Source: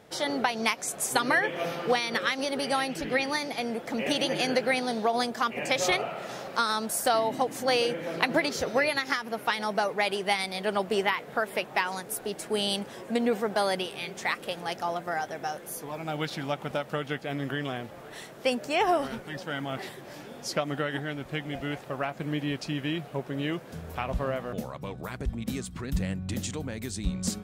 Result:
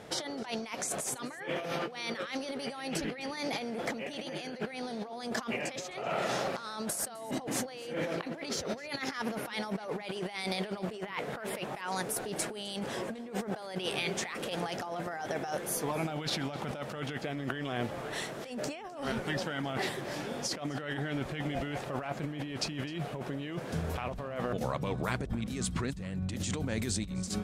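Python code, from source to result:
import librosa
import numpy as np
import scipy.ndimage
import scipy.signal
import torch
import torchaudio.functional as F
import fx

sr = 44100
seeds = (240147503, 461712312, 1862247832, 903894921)

y = scipy.signal.sosfilt(scipy.signal.butter(2, 11000.0, 'lowpass', fs=sr, output='sos'), x)
y = fx.over_compress(y, sr, threshold_db=-37.0, ratio=-1.0)
y = y + 10.0 ** (-21.0 / 20.0) * np.pad(y, (int(258 * sr / 1000.0), 0))[:len(y)]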